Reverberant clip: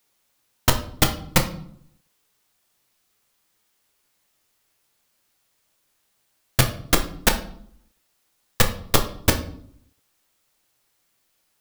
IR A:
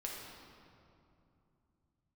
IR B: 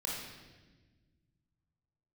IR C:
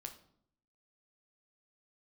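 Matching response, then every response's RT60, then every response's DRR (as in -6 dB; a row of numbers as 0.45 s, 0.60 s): C; 2.7 s, 1.3 s, 0.65 s; -3.0 dB, -5.0 dB, 4.0 dB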